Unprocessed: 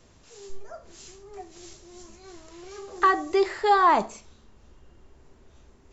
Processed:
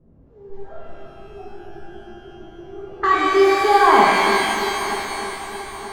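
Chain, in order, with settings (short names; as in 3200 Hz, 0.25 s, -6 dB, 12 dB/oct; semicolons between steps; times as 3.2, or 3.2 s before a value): low-pass opened by the level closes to 480 Hz, open at -20 dBFS; bell 160 Hz +7 dB 2.3 oct; on a send: multi-head echo 0.309 s, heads first and third, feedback 57%, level -15.5 dB; on the sum: shimmer reverb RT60 2.7 s, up +12 st, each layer -8 dB, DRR -7 dB; gain -2 dB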